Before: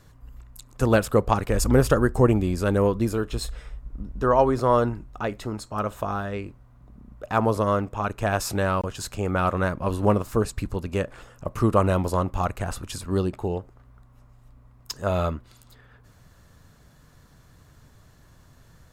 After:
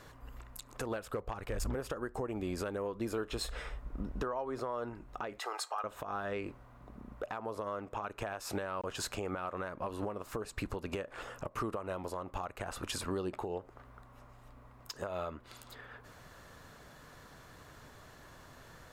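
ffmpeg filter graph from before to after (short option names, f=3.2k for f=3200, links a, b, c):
-filter_complex "[0:a]asettb=1/sr,asplit=3[a][b][c];[a]atrim=end=0.814[d];[b]atrim=start=0.81:end=1.75,asetpts=PTS-STARTPTS,afade=t=in:d=0.004:c=qsin,afade=t=out:st=0.936:d=0.004:c=qsin,asubboost=boost=10:cutoff=150,volume=10dB,asoftclip=hard,volume=-10dB[e];[c]atrim=start=1.746[f];[d][e]acrossfade=d=0.004:c1=hsin:c2=qsin[g];[g][f]acrossfade=d=0.004:c1=qsin:c2=hsin,asettb=1/sr,asplit=3[h][i][j];[h]atrim=end=5.394[k];[i]atrim=start=5.39:end=5.84,asetpts=PTS-STARTPTS,afade=t=in:d=0.004:c=qsin,afade=t=out:st=0.446:d=0.004:c=qsin,highpass=f=630:w=0.5412,highpass=f=630:w=1.3066,aecho=1:1:2.5:0.49,atrim=end_sample=19845[l];[j]atrim=start=5.836[m];[k][l]acrossfade=d=0.004:c1=hsin:c2=qsin[n];[n][m]acrossfade=d=0.004:c1=qsin:c2=hsin,bass=f=250:g=-12,treble=f=4k:g=-6,acompressor=threshold=-36dB:ratio=12,alimiter=level_in=8.5dB:limit=-24dB:level=0:latency=1:release=176,volume=-8.5dB,volume=6dB"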